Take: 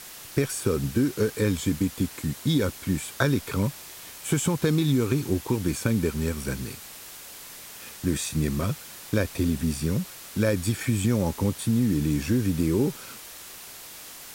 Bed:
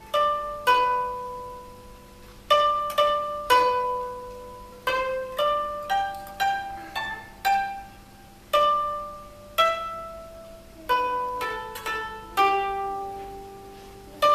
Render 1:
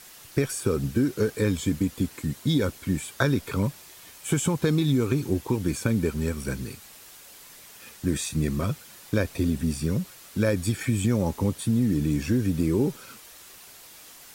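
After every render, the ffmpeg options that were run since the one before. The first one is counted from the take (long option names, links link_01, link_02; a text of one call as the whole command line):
ffmpeg -i in.wav -af "afftdn=noise_reduction=6:noise_floor=-43" out.wav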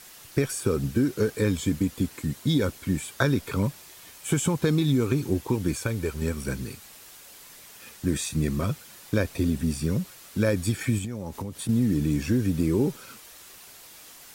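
ffmpeg -i in.wav -filter_complex "[0:a]asettb=1/sr,asplit=3[link_01][link_02][link_03];[link_01]atrim=end=5.744[link_04];[link_02]atrim=start=5.74:end=6.22,asetpts=PTS-STARTPTS,afade=type=in:duration=0.004:curve=qsin,afade=type=out:start_time=0.476:duration=0.004:curve=qsin,equalizer=frequency=210:width=1.5:gain=-11[link_05];[link_03]atrim=start=6.216[link_06];[link_04][link_05]acrossfade=duration=0.004:curve1=hsin:curve2=qsin[link_07];[link_07][link_06]acrossfade=duration=0.004:curve1=qsin:curve2=hsin,asettb=1/sr,asplit=3[link_08][link_09][link_10];[link_08]atrim=end=10.984[link_11];[link_09]atrim=start=10.98:end=11.69,asetpts=PTS-STARTPTS,afade=type=in:duration=0.004:curve=qsin,afade=type=out:start_time=0.706:duration=0.004:curve=qsin,acompressor=threshold=-29dB:ratio=6:attack=3.2:release=140:knee=1:detection=peak[link_12];[link_10]atrim=start=11.686[link_13];[link_11][link_12]acrossfade=duration=0.004:curve1=hsin:curve2=qsin[link_14];[link_14][link_13]acrossfade=duration=0.004:curve1=qsin:curve2=hsin" out.wav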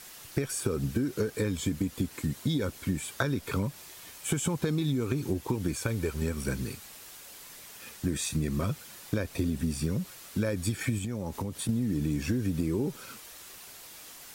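ffmpeg -i in.wav -af "acompressor=threshold=-25dB:ratio=6" out.wav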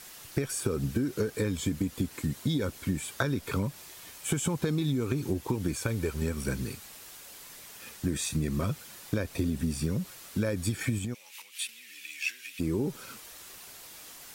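ffmpeg -i in.wav -filter_complex "[0:a]asplit=3[link_01][link_02][link_03];[link_01]afade=type=out:start_time=11.13:duration=0.02[link_04];[link_02]highpass=frequency=2500:width_type=q:width=4.1,afade=type=in:start_time=11.13:duration=0.02,afade=type=out:start_time=12.59:duration=0.02[link_05];[link_03]afade=type=in:start_time=12.59:duration=0.02[link_06];[link_04][link_05][link_06]amix=inputs=3:normalize=0" out.wav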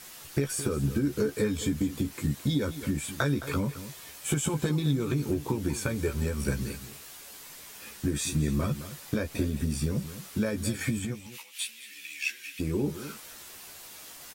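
ffmpeg -i in.wav -filter_complex "[0:a]asplit=2[link_01][link_02];[link_02]adelay=14,volume=-5dB[link_03];[link_01][link_03]amix=inputs=2:normalize=0,asplit=2[link_04][link_05];[link_05]adelay=215.7,volume=-13dB,highshelf=frequency=4000:gain=-4.85[link_06];[link_04][link_06]amix=inputs=2:normalize=0" out.wav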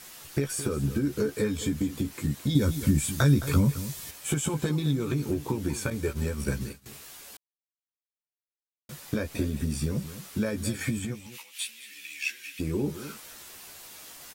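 ffmpeg -i in.wav -filter_complex "[0:a]asettb=1/sr,asplit=3[link_01][link_02][link_03];[link_01]atrim=end=2.554[link_04];[link_02]atrim=start=2.55:end=4.11,asetpts=PTS-STARTPTS,afade=type=in:duration=0.004:curve=qsin,afade=type=out:start_time=1.556:duration=0.004:curve=qsin,bass=frequency=250:gain=10,treble=frequency=4000:gain=7[link_05];[link_03]atrim=start=4.106[link_06];[link_04][link_05]acrossfade=duration=0.004:curve1=hsin:curve2=qsin[link_07];[link_07][link_06]acrossfade=duration=0.004:curve1=qsin:curve2=hsin,asettb=1/sr,asplit=3[link_08][link_09][link_10];[link_08]atrim=end=5.904[link_11];[link_09]atrim=start=5.9:end=6.86,asetpts=PTS-STARTPTS,afade=type=in:duration=0.004:curve=qsin,afade=type=out:start_time=0.956:duration=0.004:curve=qsin,agate=range=-33dB:threshold=-31dB:ratio=3:release=100:detection=peak[link_12];[link_10]atrim=start=6.856[link_13];[link_11][link_12]acrossfade=duration=0.004:curve1=hsin:curve2=qsin[link_14];[link_14][link_13]acrossfade=duration=0.004:curve1=qsin:curve2=hsin,asplit=3[link_15][link_16][link_17];[link_15]atrim=end=7.37,asetpts=PTS-STARTPTS,afade=type=out:start_time=7.366:duration=0.004:curve=hsin[link_18];[link_16]atrim=start=7.37:end=8.89,asetpts=PTS-STARTPTS,volume=0[link_19];[link_17]atrim=start=8.89,asetpts=PTS-STARTPTS,afade=type=in:duration=0.004:curve=hsin[link_20];[link_18][link_19][link_20]concat=n=3:v=0:a=1" out.wav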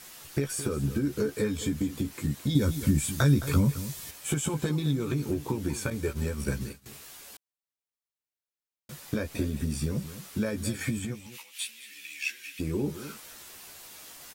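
ffmpeg -i in.wav -af "volume=-1dB" out.wav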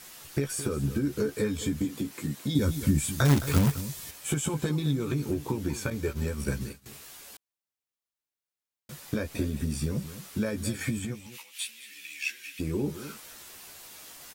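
ffmpeg -i in.wav -filter_complex "[0:a]asettb=1/sr,asplit=3[link_01][link_02][link_03];[link_01]atrim=end=1.854[link_04];[link_02]atrim=start=1.85:end=2.59,asetpts=PTS-STARTPTS,afade=type=in:duration=0.004:curve=qsin,afade=type=out:start_time=0.736:duration=0.004:curve=qsin,highpass=150[link_05];[link_03]atrim=start=2.586[link_06];[link_04][link_05]acrossfade=duration=0.004:curve1=hsin:curve2=qsin[link_07];[link_07][link_06]acrossfade=duration=0.004:curve1=qsin:curve2=hsin,asettb=1/sr,asplit=3[link_08][link_09][link_10];[link_08]atrim=end=3.254[link_11];[link_09]atrim=start=3.25:end=3.81,asetpts=PTS-STARTPTS,afade=type=in:duration=0.004:curve=qsin,afade=type=out:start_time=0.556:duration=0.004:curve=qsin,acrusher=bits=2:mode=log:mix=0:aa=0.000001[link_12];[link_10]atrim=start=3.806[link_13];[link_11][link_12]acrossfade=duration=0.004:curve1=hsin:curve2=qsin[link_14];[link_14][link_13]acrossfade=duration=0.004:curve1=qsin:curve2=hsin,asettb=1/sr,asplit=3[link_15][link_16][link_17];[link_15]atrim=end=5.634[link_18];[link_16]atrim=start=5.63:end=6.28,asetpts=PTS-STARTPTS,afade=type=in:duration=0.004:curve=qsin,afade=type=out:start_time=0.646:duration=0.004:curve=qsin,equalizer=frequency=9100:width=3.2:gain=-5.5[link_19];[link_17]atrim=start=6.276[link_20];[link_18][link_19]acrossfade=duration=0.004:curve1=hsin:curve2=qsin[link_21];[link_21][link_20]acrossfade=duration=0.004:curve1=qsin:curve2=hsin" out.wav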